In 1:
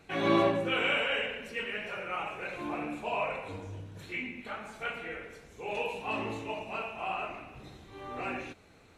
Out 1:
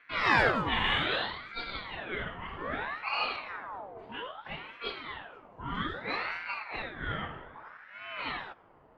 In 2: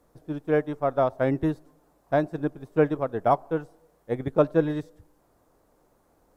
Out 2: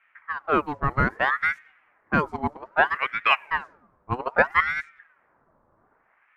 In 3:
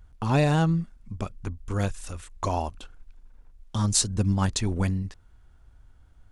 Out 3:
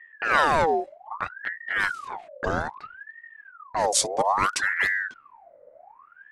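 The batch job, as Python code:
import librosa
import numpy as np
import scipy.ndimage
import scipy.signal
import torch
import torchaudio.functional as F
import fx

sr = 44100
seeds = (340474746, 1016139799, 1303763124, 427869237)

y = fx.env_lowpass(x, sr, base_hz=880.0, full_db=-20.5)
y = fx.ring_lfo(y, sr, carrier_hz=1200.0, swing_pct=55, hz=0.62)
y = y * 10.0 ** (3.5 / 20.0)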